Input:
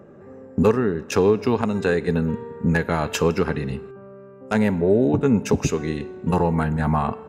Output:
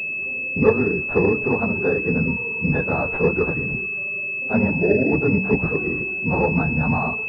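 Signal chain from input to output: phase scrambler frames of 50 ms; de-hum 64.32 Hz, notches 3; pulse-width modulation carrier 2600 Hz

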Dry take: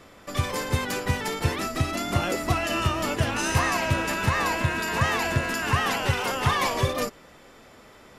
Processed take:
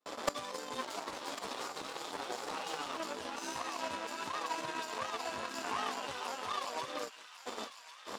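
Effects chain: 0.81–2.96 cycle switcher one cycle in 2, inverted; gate with hold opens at -39 dBFS; ten-band EQ 125 Hz -7 dB, 250 Hz +9 dB, 500 Hz +4 dB, 1000 Hz +8 dB, 2000 Hz -10 dB, 4000 Hz +8 dB, 8000 Hz +8 dB; limiter -17.5 dBFS, peak gain reduction 10.5 dB; chorus voices 2, 0.43 Hz, delay 11 ms, depth 4.8 ms; power-law curve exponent 2; flipped gate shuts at -34 dBFS, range -36 dB; overdrive pedal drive 27 dB, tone 3300 Hz, clips at -33 dBFS; thin delay 1.099 s, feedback 47%, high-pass 1500 Hz, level -9.5 dB; gain +16.5 dB

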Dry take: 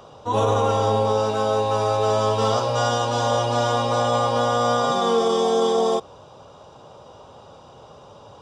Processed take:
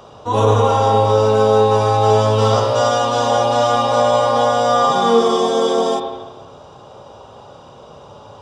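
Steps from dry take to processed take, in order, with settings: spring tank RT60 1.2 s, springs 30/37/47 ms, chirp 20 ms, DRR 3 dB; gain +3.5 dB

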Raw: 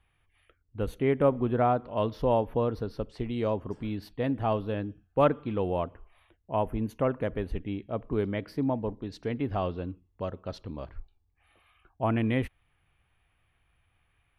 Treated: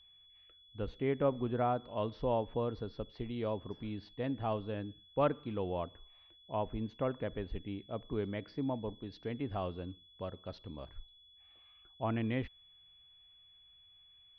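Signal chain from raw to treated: steep low-pass 5200 Hz; whine 3400 Hz -52 dBFS; gain -7.5 dB

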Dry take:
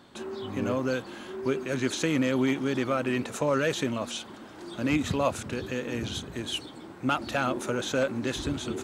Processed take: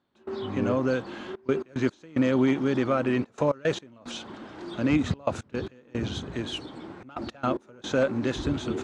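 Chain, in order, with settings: dynamic EQ 2700 Hz, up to -4 dB, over -42 dBFS, Q 0.93; step gate "..xxxxxxxx.x.x" 111 bpm -24 dB; air absorption 110 m; gain +3.5 dB

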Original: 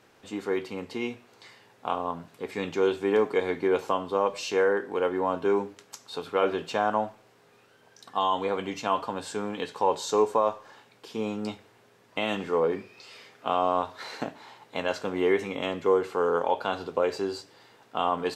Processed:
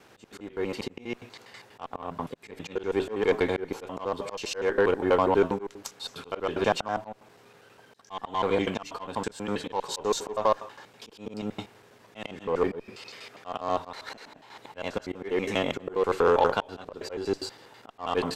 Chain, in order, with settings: slices in reverse order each 81 ms, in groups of 2; added harmonics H 5 -32 dB, 8 -27 dB, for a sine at -11.5 dBFS; auto swell 0.266 s; gain +3.5 dB

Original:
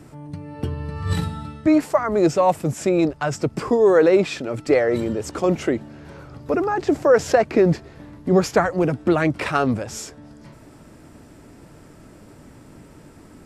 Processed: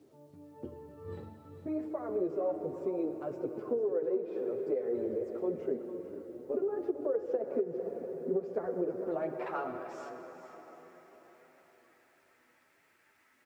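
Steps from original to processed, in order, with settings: in parallel at -2 dB: level quantiser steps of 13 dB; on the sum: band-pass sweep 420 Hz -> 2000 Hz, 8.84–10.36; 6.27–6.8 notch comb 170 Hz; on a send at -7 dB: reverb RT60 4.9 s, pre-delay 43 ms; on the sum: chorus voices 4, 0.55 Hz, delay 10 ms, depth 2.5 ms; bit-crush 11-bit; compressor 12:1, threshold -20 dBFS, peak gain reduction 13.5 dB; echo 0.45 s -12 dB; gain -8 dB

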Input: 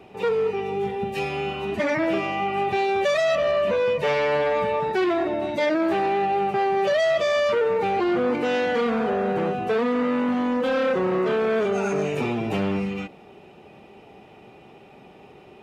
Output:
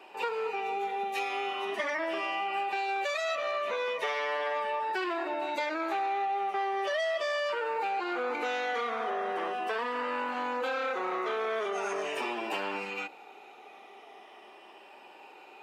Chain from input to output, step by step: moving spectral ripple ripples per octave 1.3, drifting -0.4 Hz, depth 6 dB; HPF 320 Hz 24 dB/oct; resonant low shelf 680 Hz -6 dB, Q 1.5; compressor, threshold -29 dBFS, peak gain reduction 9 dB

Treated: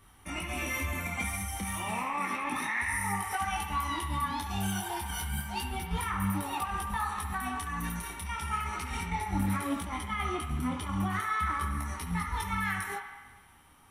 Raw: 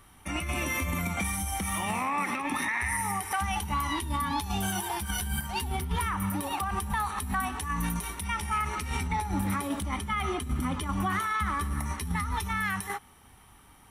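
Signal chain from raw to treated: band-limited delay 70 ms, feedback 70%, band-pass 1500 Hz, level -6 dB; detuned doubles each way 11 cents

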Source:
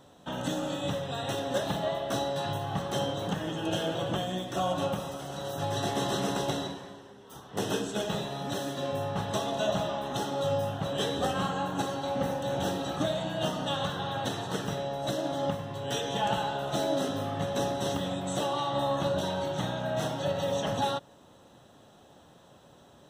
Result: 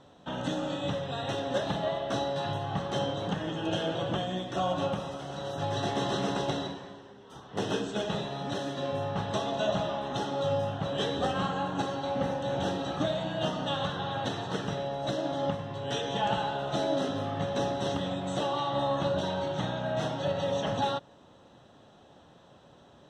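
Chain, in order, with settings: LPF 5200 Hz 12 dB/oct

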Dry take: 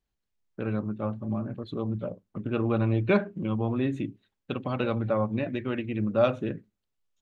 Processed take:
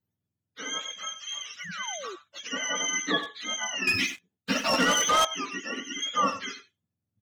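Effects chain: spectrum mirrored in octaves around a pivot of 830 Hz; 0.99–2.04 band shelf 520 Hz -13 dB 2.4 oct; speakerphone echo 90 ms, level -11 dB; 1.6–2.16 painted sound fall 340–2300 Hz -40 dBFS; 3.87–5.25 sample leveller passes 3

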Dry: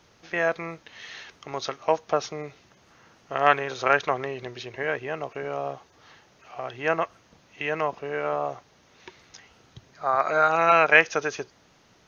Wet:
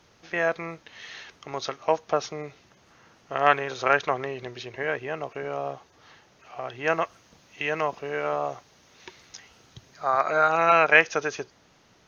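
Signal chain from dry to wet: 6.87–10.22 high shelf 3900 Hz +7 dB; MP3 128 kbps 44100 Hz

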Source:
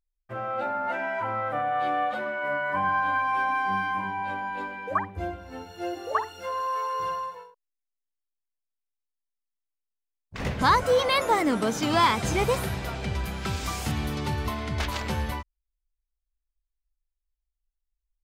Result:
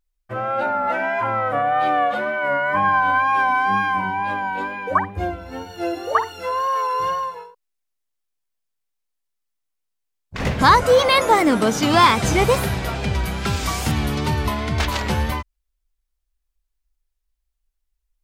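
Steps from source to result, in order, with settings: wow and flutter 47 cents; gain +7.5 dB

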